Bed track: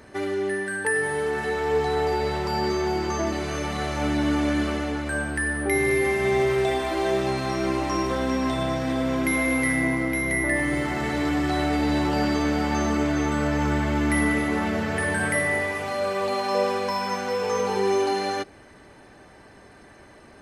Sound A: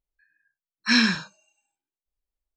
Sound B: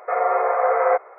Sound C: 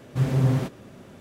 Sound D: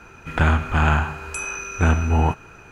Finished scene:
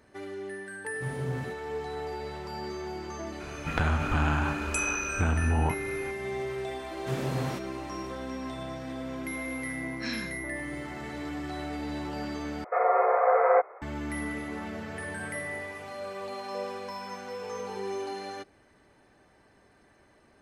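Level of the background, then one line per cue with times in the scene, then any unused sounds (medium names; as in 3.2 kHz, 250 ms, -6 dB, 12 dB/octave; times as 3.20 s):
bed track -12 dB
0.85 s: add C -13 dB
3.40 s: add D -0.5 dB + compression, threshold -22 dBFS
6.91 s: add C -1.5 dB + high-pass 410 Hz 6 dB/octave
9.14 s: add A -16.5 dB
12.64 s: replace with B -4.5 dB + bass shelf 430 Hz +4 dB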